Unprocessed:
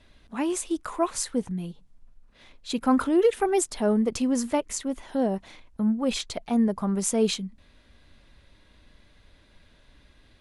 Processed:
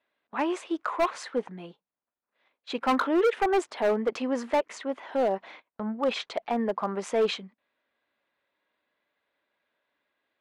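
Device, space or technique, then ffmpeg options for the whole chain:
walkie-talkie: -af "highpass=510,lowpass=2300,asoftclip=type=hard:threshold=0.0562,agate=range=0.112:threshold=0.002:ratio=16:detection=peak,volume=2"

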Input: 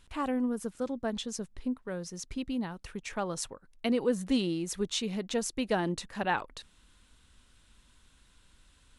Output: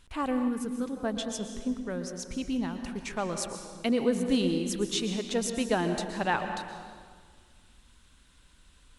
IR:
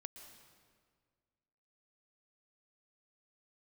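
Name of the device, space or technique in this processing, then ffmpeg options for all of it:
stairwell: -filter_complex "[1:a]atrim=start_sample=2205[s0];[0:a][s0]afir=irnorm=-1:irlink=0,asettb=1/sr,asplit=3[s1][s2][s3];[s1]atrim=end=0.484[s4];[s2]atrim=start=0.48:end=0.97,asetpts=PTS-STARTPTS,afade=t=in:d=0.004:c=qsin,afade=t=out:st=0.486:d=0.004:c=qsin,equalizer=f=670:t=o:w=0.88:g=-10[s5];[s3]atrim=start=0.966[s6];[s4][s5]acrossfade=d=0.004:c1=hsin:c2=qsin[s7];[s7][s6]acrossfade=d=0.004:c1=qsin:c2=hsin,volume=2.37"

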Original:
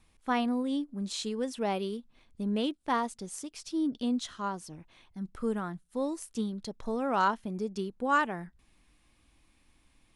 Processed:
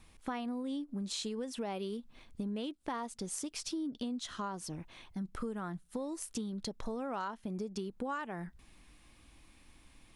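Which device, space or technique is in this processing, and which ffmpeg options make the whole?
serial compression, peaks first: -af "acompressor=threshold=0.0126:ratio=4,acompressor=threshold=0.00708:ratio=2,volume=1.88"

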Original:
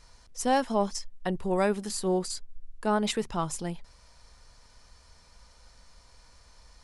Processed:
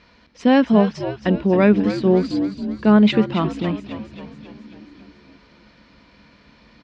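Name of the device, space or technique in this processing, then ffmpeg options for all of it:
frequency-shifting delay pedal into a guitar cabinet: -filter_complex "[0:a]asplit=8[s0][s1][s2][s3][s4][s5][s6][s7];[s1]adelay=271,afreqshift=-74,volume=0.299[s8];[s2]adelay=542,afreqshift=-148,volume=0.176[s9];[s3]adelay=813,afreqshift=-222,volume=0.104[s10];[s4]adelay=1084,afreqshift=-296,volume=0.0617[s11];[s5]adelay=1355,afreqshift=-370,volume=0.0363[s12];[s6]adelay=1626,afreqshift=-444,volume=0.0214[s13];[s7]adelay=1897,afreqshift=-518,volume=0.0126[s14];[s0][s8][s9][s10][s11][s12][s13][s14]amix=inputs=8:normalize=0,highpass=97,equalizer=f=110:t=q:w=4:g=-8,equalizer=f=210:t=q:w=4:g=8,equalizer=f=290:t=q:w=4:g=8,equalizer=f=810:t=q:w=4:g=-7,equalizer=f=1200:t=q:w=4:g=-3,equalizer=f=2400:t=q:w=4:g=4,lowpass=f=3700:w=0.5412,lowpass=f=3700:w=1.3066,volume=2.82"

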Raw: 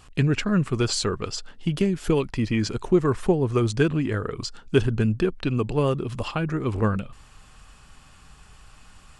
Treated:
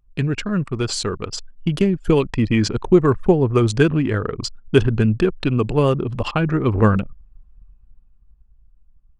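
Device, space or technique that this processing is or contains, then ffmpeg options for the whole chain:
voice memo with heavy noise removal: -af "anlmdn=6.31,dynaudnorm=f=250:g=13:m=3.76"

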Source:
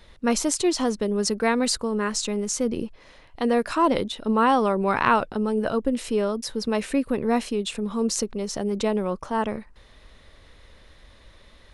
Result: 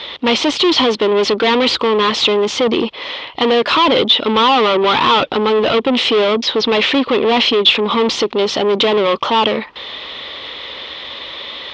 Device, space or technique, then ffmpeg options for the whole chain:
overdrive pedal into a guitar cabinet: -filter_complex "[0:a]asettb=1/sr,asplit=3[s0][s1][s2];[s0]atrim=end=6.364[s3];[s1]atrim=start=6.36:end=7.87,asetpts=PTS-STARTPTS,afade=t=in:d=0.004:c=qsin,afade=t=out:st=1.506:d=0.004:c=qsin,lowpass=f=6800:w=0.5412,lowpass=f=6800:w=1.3066[s4];[s2]atrim=start=7.866[s5];[s3][s4]acrossfade=d=0.004:c1=hsin:c2=qsin[s6];[s6][s5]acrossfade=d=0.004:c1=qsin:c2=hsin,asplit=2[s7][s8];[s8]highpass=f=720:p=1,volume=50.1,asoftclip=type=tanh:threshold=0.596[s9];[s7][s9]amix=inputs=2:normalize=0,lowpass=f=6400:p=1,volume=0.501,highpass=83,equalizer=f=95:t=q:w=4:g=-8,equalizer=f=190:t=q:w=4:g=-9,equalizer=f=660:t=q:w=4:g=-4,equalizer=f=1600:t=q:w=4:g=-9,equalizer=f=3300:t=q:w=4:g=9,lowpass=f=4300:w=0.5412,lowpass=f=4300:w=1.3066"

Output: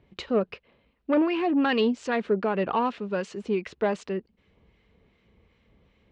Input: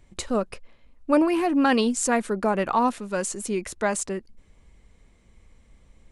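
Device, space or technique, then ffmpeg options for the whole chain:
guitar amplifier with harmonic tremolo: -filter_complex "[0:a]acrossover=split=1100[s0][s1];[s0]aeval=exprs='val(0)*(1-0.5/2+0.5/2*cos(2*PI*2.6*n/s))':c=same[s2];[s1]aeval=exprs='val(0)*(1-0.5/2-0.5/2*cos(2*PI*2.6*n/s))':c=same[s3];[s2][s3]amix=inputs=2:normalize=0,asoftclip=type=tanh:threshold=0.15,highpass=75,equalizer=f=180:t=q:w=4:g=3,equalizer=f=430:t=q:w=4:g=6,equalizer=f=2800:t=q:w=4:g=4,lowpass=f=4200:w=0.5412,lowpass=f=4200:w=1.3066"

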